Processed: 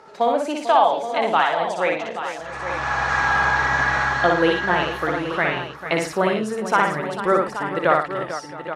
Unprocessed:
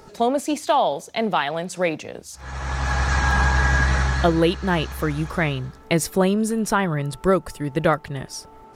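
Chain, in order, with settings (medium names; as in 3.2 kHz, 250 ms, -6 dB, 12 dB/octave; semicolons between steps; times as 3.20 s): band-pass filter 1.2 kHz, Q 0.63; on a send: multi-tap echo 60/112/446/668/828/889 ms -3/-11.5/-11.5/-20/-11/-11.5 dB; on the sum: trim +3 dB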